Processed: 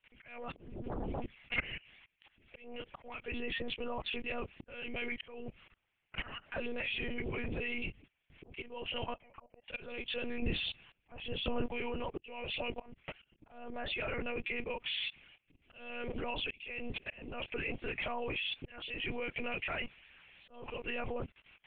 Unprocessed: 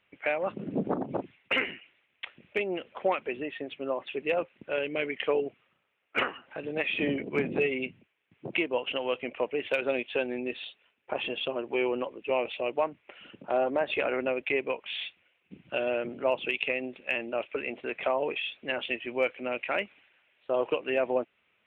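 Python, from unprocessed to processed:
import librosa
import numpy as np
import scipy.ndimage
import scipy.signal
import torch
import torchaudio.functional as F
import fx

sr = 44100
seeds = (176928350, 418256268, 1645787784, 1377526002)

y = fx.octave_divider(x, sr, octaves=1, level_db=1.0)
y = fx.highpass(y, sr, hz=fx.line((15.61, 140.0), (16.14, 340.0)), slope=24, at=(15.61, 16.14), fade=0.02)
y = fx.hpss(y, sr, part='harmonic', gain_db=-5)
y = fx.auto_wah(y, sr, base_hz=620.0, top_hz=1400.0, q=5.0, full_db=-25.0, direction='down', at=(9.04, 9.69))
y = fx.high_shelf(y, sr, hz=2300.0, db=10.0)
y = fx.level_steps(y, sr, step_db=23)
y = fx.lpc_monotone(y, sr, seeds[0], pitch_hz=240.0, order=10)
y = fx.auto_swell(y, sr, attack_ms=408.0)
y = fx.low_shelf(y, sr, hz=450.0, db=7.5, at=(10.42, 11.66))
y = F.gain(torch.from_numpy(y), 9.0).numpy()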